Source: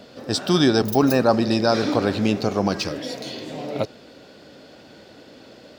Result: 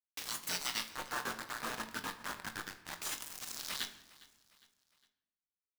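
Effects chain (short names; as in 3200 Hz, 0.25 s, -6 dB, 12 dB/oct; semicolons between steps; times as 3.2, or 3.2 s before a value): rattling part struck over -35 dBFS, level -17 dBFS; 0.88–3.02 elliptic low-pass 1500 Hz, stop band 40 dB; gate with hold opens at -33 dBFS; steep high-pass 370 Hz 36 dB/oct; spectral gate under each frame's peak -25 dB weak; compressor 3:1, threshold -58 dBFS, peak gain reduction 21 dB; bit-crush 9-bit; doubler 22 ms -11 dB; feedback echo 0.407 s, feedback 46%, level -21 dB; reverb RT60 0.95 s, pre-delay 7 ms, DRR 8.5 dB; gain +16 dB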